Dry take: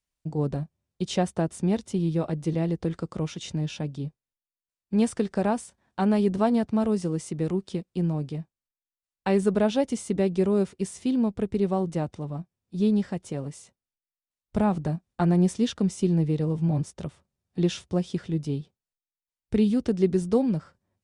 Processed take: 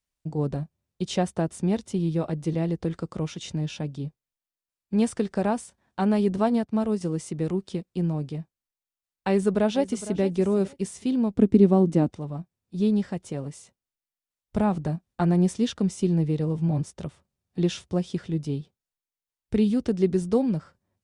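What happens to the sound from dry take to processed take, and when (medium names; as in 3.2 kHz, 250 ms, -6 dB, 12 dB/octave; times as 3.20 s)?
6.48–7.01 s: upward expansion, over -44 dBFS
9.29–10.21 s: echo throw 460 ms, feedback 20%, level -15 dB
11.37–12.10 s: peaking EQ 260 Hz +14 dB 1.1 oct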